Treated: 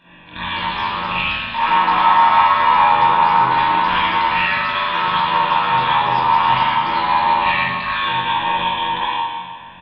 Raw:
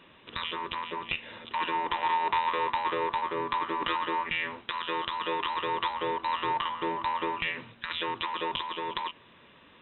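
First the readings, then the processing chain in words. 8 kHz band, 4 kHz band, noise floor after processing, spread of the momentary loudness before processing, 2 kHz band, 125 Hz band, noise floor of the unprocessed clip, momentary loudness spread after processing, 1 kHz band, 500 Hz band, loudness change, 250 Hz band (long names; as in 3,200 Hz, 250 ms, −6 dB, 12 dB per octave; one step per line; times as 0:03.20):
can't be measured, +12.5 dB, −37 dBFS, 7 LU, +14.5 dB, +18.0 dB, −57 dBFS, 8 LU, +16.0 dB, +6.0 dB, +15.0 dB, +9.0 dB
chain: comb filter 1.2 ms, depth 76%
on a send: flutter between parallel walls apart 3.9 metres, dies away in 0.42 s
on the sum: delay with pitch and tempo change per echo 263 ms, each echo +3 semitones, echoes 2, each echo −6 dB
spring reverb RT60 1.5 s, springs 39/56 ms, chirp 80 ms, DRR −10 dB
highs frequency-modulated by the lows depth 0.1 ms
level −1 dB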